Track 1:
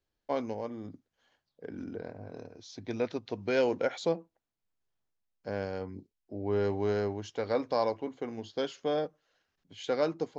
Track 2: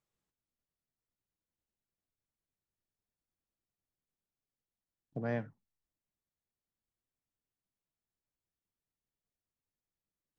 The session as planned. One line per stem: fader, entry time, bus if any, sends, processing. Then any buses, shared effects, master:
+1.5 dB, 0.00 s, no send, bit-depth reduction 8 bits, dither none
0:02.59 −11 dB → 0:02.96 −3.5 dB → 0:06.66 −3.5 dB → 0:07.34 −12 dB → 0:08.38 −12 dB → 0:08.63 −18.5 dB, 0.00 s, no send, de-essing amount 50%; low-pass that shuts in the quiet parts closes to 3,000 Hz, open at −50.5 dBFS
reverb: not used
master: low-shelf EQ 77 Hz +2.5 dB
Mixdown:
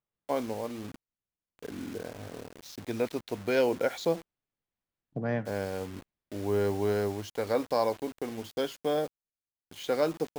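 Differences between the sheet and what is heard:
stem 2 −11.0 dB → −3.0 dB
master: missing low-shelf EQ 77 Hz +2.5 dB

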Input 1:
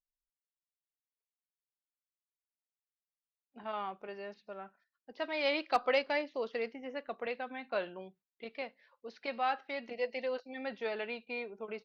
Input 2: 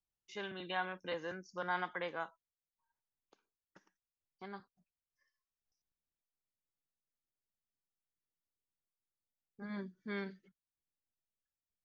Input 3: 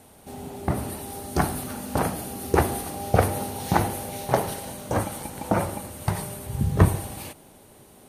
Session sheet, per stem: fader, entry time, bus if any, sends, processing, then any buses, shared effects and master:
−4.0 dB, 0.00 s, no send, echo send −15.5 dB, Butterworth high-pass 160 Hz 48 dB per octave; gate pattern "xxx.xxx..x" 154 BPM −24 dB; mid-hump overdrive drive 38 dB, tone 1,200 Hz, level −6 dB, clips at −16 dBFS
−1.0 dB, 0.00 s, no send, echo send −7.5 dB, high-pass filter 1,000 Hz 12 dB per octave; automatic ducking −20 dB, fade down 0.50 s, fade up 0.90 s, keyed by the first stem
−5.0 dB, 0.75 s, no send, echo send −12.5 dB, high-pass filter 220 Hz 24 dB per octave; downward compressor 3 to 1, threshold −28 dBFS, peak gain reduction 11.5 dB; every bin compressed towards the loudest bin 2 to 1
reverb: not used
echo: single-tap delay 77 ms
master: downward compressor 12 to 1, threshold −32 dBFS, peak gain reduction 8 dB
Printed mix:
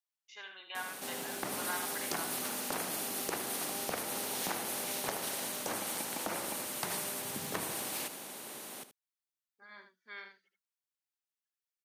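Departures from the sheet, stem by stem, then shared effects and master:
stem 1: muted
master: missing downward compressor 12 to 1, threshold −32 dBFS, peak gain reduction 8 dB

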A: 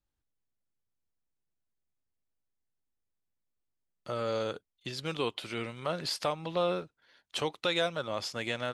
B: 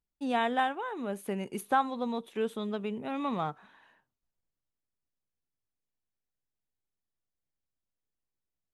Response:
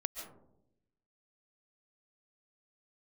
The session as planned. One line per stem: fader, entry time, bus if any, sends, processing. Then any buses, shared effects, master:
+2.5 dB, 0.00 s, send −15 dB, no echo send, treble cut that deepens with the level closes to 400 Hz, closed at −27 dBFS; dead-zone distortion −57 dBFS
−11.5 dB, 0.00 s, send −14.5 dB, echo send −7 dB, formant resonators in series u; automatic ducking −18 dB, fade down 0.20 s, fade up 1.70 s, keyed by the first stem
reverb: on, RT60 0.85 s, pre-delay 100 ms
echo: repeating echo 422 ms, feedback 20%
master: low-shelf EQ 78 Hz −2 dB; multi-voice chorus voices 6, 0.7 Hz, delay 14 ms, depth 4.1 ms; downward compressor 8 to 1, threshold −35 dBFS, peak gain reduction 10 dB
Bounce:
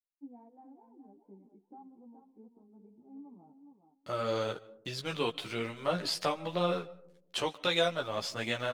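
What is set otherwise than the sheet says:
stem A: missing treble cut that deepens with the level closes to 400 Hz, closed at −27 dBFS
master: missing downward compressor 8 to 1, threshold −35 dBFS, peak gain reduction 10 dB

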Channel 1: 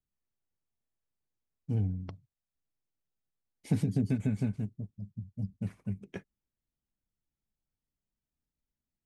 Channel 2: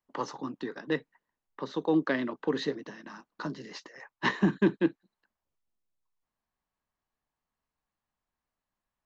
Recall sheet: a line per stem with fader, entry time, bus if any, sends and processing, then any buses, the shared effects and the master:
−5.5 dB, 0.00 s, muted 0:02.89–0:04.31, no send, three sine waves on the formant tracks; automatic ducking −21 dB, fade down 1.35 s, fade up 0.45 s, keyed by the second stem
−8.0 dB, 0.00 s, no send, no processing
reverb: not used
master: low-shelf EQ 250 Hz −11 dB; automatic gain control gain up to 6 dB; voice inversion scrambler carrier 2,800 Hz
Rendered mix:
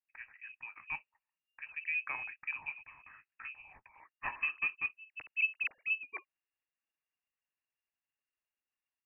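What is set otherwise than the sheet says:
stem 2 −8.0 dB → −16.5 dB
master: missing low-shelf EQ 250 Hz −11 dB

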